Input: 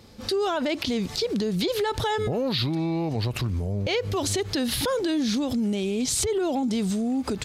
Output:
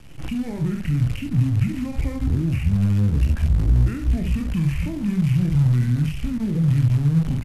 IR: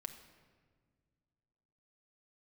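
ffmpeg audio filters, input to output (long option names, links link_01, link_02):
-filter_complex "[0:a]equalizer=frequency=4000:width_type=o:width=1.8:gain=2,aecho=1:1:30|65:0.531|0.398,acompressor=threshold=-24dB:ratio=2.5,aresample=11025,aresample=44100,acrusher=bits=6:dc=4:mix=0:aa=0.000001,bandreject=frequency=111.7:width_type=h:width=4,bandreject=frequency=223.4:width_type=h:width=4,acrossover=split=360[link_01][link_02];[link_02]acompressor=threshold=-39dB:ratio=6[link_03];[link_01][link_03]amix=inputs=2:normalize=0,asplit=2[link_04][link_05];[1:a]atrim=start_sample=2205,asetrate=66150,aresample=44100[link_06];[link_05][link_06]afir=irnorm=-1:irlink=0,volume=-3.5dB[link_07];[link_04][link_07]amix=inputs=2:normalize=0,asetrate=26990,aresample=44100,atempo=1.63392,lowshelf=frequency=220:gain=11"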